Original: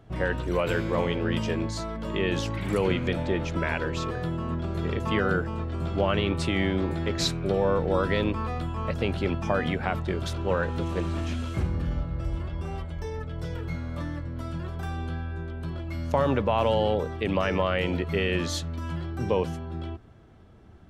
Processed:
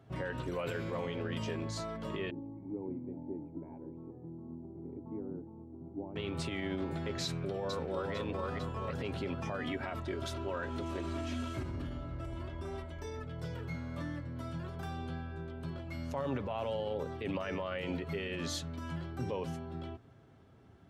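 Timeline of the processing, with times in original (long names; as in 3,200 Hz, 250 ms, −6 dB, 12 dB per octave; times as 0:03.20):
0:02.30–0:06.16: formant resonators in series u
0:07.24–0:08.13: delay throw 450 ms, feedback 40%, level −4 dB
0:09.63–0:13.26: comb filter 3.1 ms, depth 59%
whole clip: brickwall limiter −21.5 dBFS; high-pass filter 77 Hz; comb filter 7.4 ms, depth 33%; level −6 dB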